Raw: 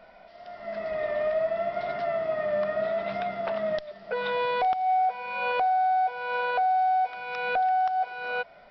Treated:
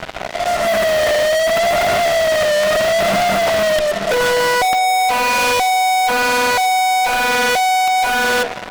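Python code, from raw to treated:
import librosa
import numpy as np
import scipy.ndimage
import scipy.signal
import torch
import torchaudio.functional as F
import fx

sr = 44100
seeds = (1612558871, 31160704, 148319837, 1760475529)

y = fx.peak_eq(x, sr, hz=4400.0, db=-12.0, octaves=0.39)
y = fx.hum_notches(y, sr, base_hz=60, count=8)
y = fx.fuzz(y, sr, gain_db=50.0, gate_db=-49.0)
y = fx.echo_banded(y, sr, ms=535, feedback_pct=74, hz=710.0, wet_db=-21.0)
y = F.gain(torch.from_numpy(y), -1.0).numpy()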